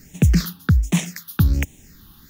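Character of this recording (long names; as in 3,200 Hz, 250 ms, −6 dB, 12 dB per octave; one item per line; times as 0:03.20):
a quantiser's noise floor 10 bits, dither triangular
phaser sweep stages 6, 1.3 Hz, lowest notch 560–1,300 Hz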